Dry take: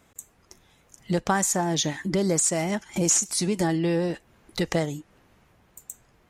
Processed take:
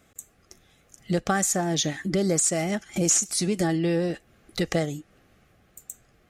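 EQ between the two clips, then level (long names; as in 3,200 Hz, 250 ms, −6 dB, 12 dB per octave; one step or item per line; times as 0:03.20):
Butterworth band-reject 950 Hz, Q 4
0.0 dB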